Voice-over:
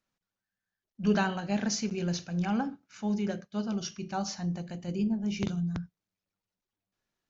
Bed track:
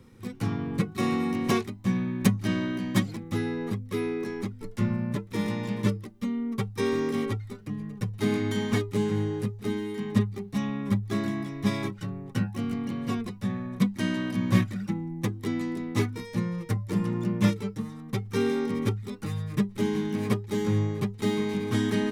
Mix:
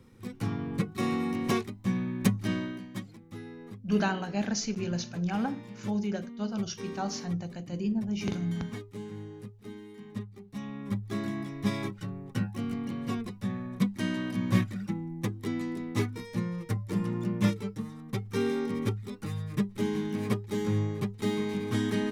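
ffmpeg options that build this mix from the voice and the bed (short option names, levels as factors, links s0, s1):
-filter_complex "[0:a]adelay=2850,volume=0.944[s0];[1:a]volume=2.51,afade=t=out:st=2.53:d=0.35:silence=0.281838,afade=t=in:st=10.31:d=1.15:silence=0.281838[s1];[s0][s1]amix=inputs=2:normalize=0"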